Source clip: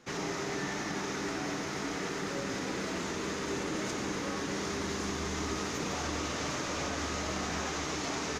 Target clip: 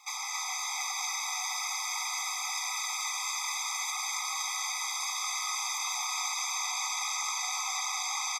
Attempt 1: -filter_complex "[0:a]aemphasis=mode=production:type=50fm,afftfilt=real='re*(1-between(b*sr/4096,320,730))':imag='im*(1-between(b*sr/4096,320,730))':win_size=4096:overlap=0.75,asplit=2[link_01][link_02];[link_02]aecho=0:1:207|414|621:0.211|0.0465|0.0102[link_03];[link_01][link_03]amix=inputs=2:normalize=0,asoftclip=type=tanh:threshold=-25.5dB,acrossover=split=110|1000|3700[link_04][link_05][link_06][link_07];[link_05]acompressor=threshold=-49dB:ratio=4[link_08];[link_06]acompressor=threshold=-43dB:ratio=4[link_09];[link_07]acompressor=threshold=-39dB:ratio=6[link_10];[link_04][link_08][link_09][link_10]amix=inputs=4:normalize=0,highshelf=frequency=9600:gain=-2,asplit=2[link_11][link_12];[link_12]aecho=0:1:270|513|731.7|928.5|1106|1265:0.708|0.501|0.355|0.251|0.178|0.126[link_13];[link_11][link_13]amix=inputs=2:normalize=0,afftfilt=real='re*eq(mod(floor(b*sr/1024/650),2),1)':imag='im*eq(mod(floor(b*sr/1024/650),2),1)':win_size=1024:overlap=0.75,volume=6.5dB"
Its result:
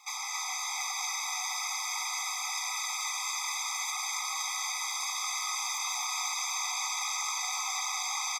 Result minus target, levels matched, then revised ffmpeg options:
soft clipping: distortion +18 dB
-filter_complex "[0:a]aemphasis=mode=production:type=50fm,afftfilt=real='re*(1-between(b*sr/4096,320,730))':imag='im*(1-between(b*sr/4096,320,730))':win_size=4096:overlap=0.75,asplit=2[link_01][link_02];[link_02]aecho=0:1:207|414|621:0.211|0.0465|0.0102[link_03];[link_01][link_03]amix=inputs=2:normalize=0,asoftclip=type=tanh:threshold=-15.5dB,acrossover=split=110|1000|3700[link_04][link_05][link_06][link_07];[link_05]acompressor=threshold=-49dB:ratio=4[link_08];[link_06]acompressor=threshold=-43dB:ratio=4[link_09];[link_07]acompressor=threshold=-39dB:ratio=6[link_10];[link_04][link_08][link_09][link_10]amix=inputs=4:normalize=0,highshelf=frequency=9600:gain=-2,asplit=2[link_11][link_12];[link_12]aecho=0:1:270|513|731.7|928.5|1106|1265:0.708|0.501|0.355|0.251|0.178|0.126[link_13];[link_11][link_13]amix=inputs=2:normalize=0,afftfilt=real='re*eq(mod(floor(b*sr/1024/650),2),1)':imag='im*eq(mod(floor(b*sr/1024/650),2),1)':win_size=1024:overlap=0.75,volume=6.5dB"

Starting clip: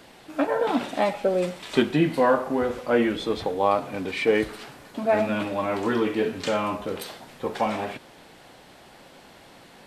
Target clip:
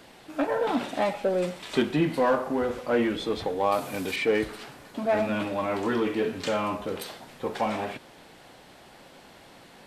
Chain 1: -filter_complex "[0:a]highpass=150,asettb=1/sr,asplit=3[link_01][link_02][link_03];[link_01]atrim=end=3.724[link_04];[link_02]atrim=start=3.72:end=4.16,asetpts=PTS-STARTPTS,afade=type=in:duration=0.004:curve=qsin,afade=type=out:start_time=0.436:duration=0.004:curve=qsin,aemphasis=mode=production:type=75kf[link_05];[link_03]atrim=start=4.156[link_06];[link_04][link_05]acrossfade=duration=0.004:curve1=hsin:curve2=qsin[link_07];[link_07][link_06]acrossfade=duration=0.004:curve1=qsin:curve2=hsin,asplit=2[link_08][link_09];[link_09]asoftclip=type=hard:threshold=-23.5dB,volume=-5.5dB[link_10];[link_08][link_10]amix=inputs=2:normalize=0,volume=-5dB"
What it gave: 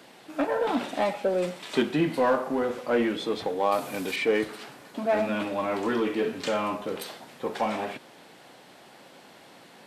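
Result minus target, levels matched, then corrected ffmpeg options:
125 Hz band −3.0 dB
-filter_complex "[0:a]asettb=1/sr,asplit=3[link_01][link_02][link_03];[link_01]atrim=end=3.724[link_04];[link_02]atrim=start=3.72:end=4.16,asetpts=PTS-STARTPTS,afade=type=in:duration=0.004:curve=qsin,afade=type=out:start_time=0.436:duration=0.004:curve=qsin,aemphasis=mode=production:type=75kf[link_05];[link_03]atrim=start=4.156[link_06];[link_04][link_05]acrossfade=duration=0.004:curve1=hsin:curve2=qsin[link_07];[link_07][link_06]acrossfade=duration=0.004:curve1=qsin:curve2=hsin,asplit=2[link_08][link_09];[link_09]asoftclip=type=hard:threshold=-23.5dB,volume=-5.5dB[link_10];[link_08][link_10]amix=inputs=2:normalize=0,volume=-5dB"

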